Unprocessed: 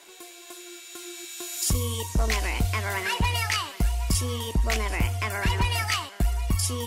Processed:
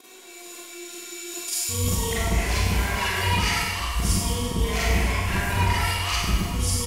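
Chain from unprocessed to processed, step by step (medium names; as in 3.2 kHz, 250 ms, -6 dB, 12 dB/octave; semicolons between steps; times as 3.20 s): time reversed locally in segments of 211 ms; speakerphone echo 90 ms, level -11 dB; Schroeder reverb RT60 1.4 s, combs from 33 ms, DRR -9 dB; trim -6.5 dB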